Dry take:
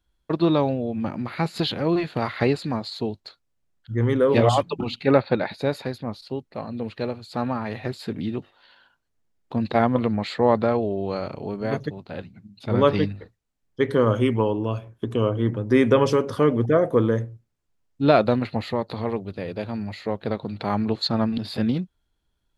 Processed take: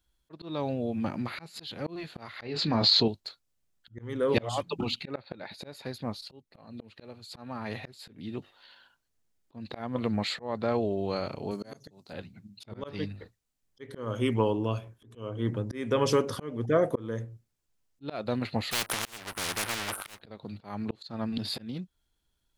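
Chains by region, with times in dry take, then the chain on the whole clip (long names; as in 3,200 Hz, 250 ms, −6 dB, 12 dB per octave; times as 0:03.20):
0:02.42–0:03.08: low-pass filter 5,400 Hz 24 dB per octave + double-tracking delay 26 ms −9.5 dB + envelope flattener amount 70%
0:11.51–0:12.13: high-pass filter 120 Hz + high shelf with overshoot 4,200 Hz +10.5 dB, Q 1.5
0:18.71–0:20.21: linear-phase brick-wall band-stop 1,600–8,200 Hz + leveller curve on the samples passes 2 + every bin compressed towards the loudest bin 10 to 1
whole clip: high-shelf EQ 3,300 Hz +9 dB; volume swells 426 ms; level −4 dB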